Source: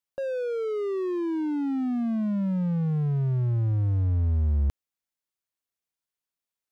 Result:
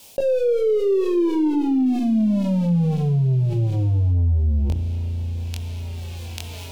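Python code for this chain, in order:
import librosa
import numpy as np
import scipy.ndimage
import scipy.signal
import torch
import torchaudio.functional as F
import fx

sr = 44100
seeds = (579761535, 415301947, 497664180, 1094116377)

y = fx.tracing_dist(x, sr, depth_ms=0.42)
y = fx.high_shelf(y, sr, hz=2900.0, db=11.0, at=(1.86, 4.11))
y = fx.rev_spring(y, sr, rt60_s=2.8, pass_ms=(35,), chirp_ms=40, drr_db=16.0)
y = fx.rotary_switch(y, sr, hz=0.65, then_hz=5.0, switch_at_s=4.17)
y = fx.band_shelf(y, sr, hz=1500.0, db=-12.5, octaves=1.1)
y = fx.doubler(y, sr, ms=23.0, db=-2.5)
y = fx.echo_wet_highpass(y, sr, ms=841, feedback_pct=55, hz=2100.0, wet_db=-11)
y = fx.rider(y, sr, range_db=4, speed_s=0.5)
y = fx.hum_notches(y, sr, base_hz=60, count=6)
y = fx.env_flatten(y, sr, amount_pct=70)
y = y * 10.0 ** (3.5 / 20.0)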